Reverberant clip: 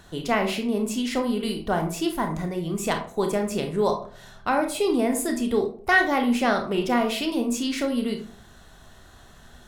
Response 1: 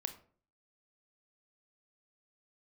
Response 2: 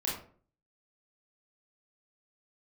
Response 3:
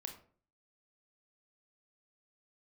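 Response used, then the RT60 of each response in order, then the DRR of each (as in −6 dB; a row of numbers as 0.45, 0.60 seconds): 3; 0.45, 0.45, 0.45 seconds; 8.0, −5.0, 4.0 decibels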